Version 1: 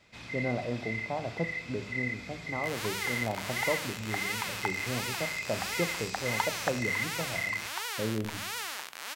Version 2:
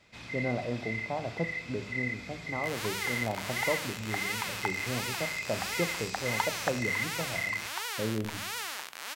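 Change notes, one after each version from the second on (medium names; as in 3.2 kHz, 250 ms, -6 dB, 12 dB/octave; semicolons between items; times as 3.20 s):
no change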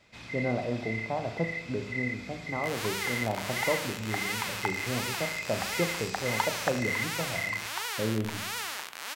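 speech: send +6.5 dB; second sound: send +6.0 dB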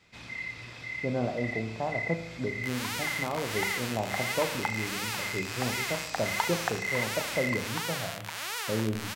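speech: entry +0.70 s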